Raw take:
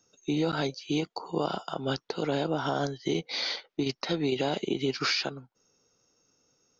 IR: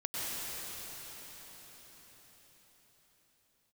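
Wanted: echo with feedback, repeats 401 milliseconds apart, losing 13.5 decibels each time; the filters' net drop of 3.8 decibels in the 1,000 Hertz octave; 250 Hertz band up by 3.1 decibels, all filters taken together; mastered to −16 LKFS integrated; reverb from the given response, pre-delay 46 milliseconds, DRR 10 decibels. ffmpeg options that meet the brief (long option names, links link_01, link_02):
-filter_complex "[0:a]equalizer=frequency=250:width_type=o:gain=4.5,equalizer=frequency=1000:width_type=o:gain=-6,aecho=1:1:401|802:0.211|0.0444,asplit=2[link_01][link_02];[1:a]atrim=start_sample=2205,adelay=46[link_03];[link_02][link_03]afir=irnorm=-1:irlink=0,volume=-16dB[link_04];[link_01][link_04]amix=inputs=2:normalize=0,volume=13dB"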